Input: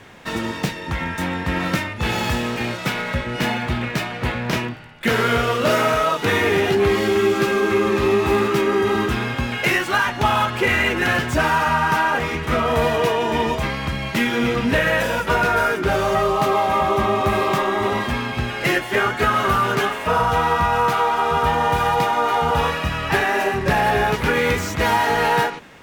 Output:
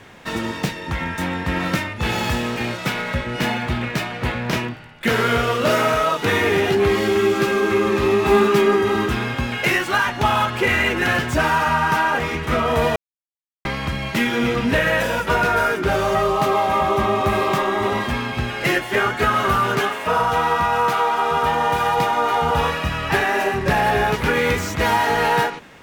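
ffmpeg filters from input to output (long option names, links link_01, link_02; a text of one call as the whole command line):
ffmpeg -i in.wav -filter_complex "[0:a]asettb=1/sr,asplit=3[link_01][link_02][link_03];[link_01]atrim=end=8.244[link_04];[link_02]atrim=start=8.24:end=8.76,asetpts=PTS-STARTPTS,afade=type=in:duration=0.004:curve=qsin,afade=type=out:start_time=0.516:duration=0.004:curve=qsin,aecho=1:1:4.9:0.65,atrim=end_sample=22932[link_05];[link_03]atrim=start=8.756[link_06];[link_04][link_05]acrossfade=duration=0.004:curve1=hsin:curve2=qsin[link_07];[link_07][link_06]acrossfade=duration=0.004:curve1=qsin:curve2=hsin,asettb=1/sr,asplit=3[link_08][link_09][link_10];[link_08]atrim=end=19.814[link_11];[link_09]atrim=start=19.81:end=21.97,asetpts=PTS-STARTPTS,afade=type=in:duration=0.004:curve=qsin,afade=type=out:start_time=2.156:duration=0.004:curve=qsin,lowshelf=frequency=100:gain=-11.5[link_12];[link_10]atrim=start=21.966[link_13];[link_11][link_12]acrossfade=duration=0.004:curve1=hsin:curve2=qsin[link_14];[link_14][link_13]acrossfade=duration=0.004:curve1=qsin:curve2=hsin,asplit=3[link_15][link_16][link_17];[link_15]atrim=end=12.96,asetpts=PTS-STARTPTS,afade=type=out:start_time=12.956:duration=0.004:curve=hsin[link_18];[link_16]atrim=start=12.96:end=13.65,asetpts=PTS-STARTPTS,volume=0[link_19];[link_17]atrim=start=13.65,asetpts=PTS-STARTPTS,afade=type=in:duration=0.004:curve=hsin[link_20];[link_18][link_19][link_20]concat=n=3:v=0:a=1" out.wav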